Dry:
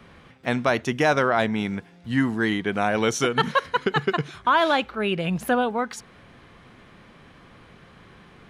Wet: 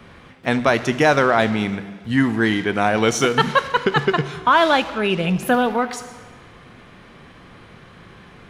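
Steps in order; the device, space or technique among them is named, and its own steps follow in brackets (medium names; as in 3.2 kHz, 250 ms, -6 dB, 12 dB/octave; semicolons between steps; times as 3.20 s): saturated reverb return (on a send at -6.5 dB: reverberation RT60 1.2 s, pre-delay 8 ms + saturation -26 dBFS, distortion -8 dB); on the sum: trim +4.5 dB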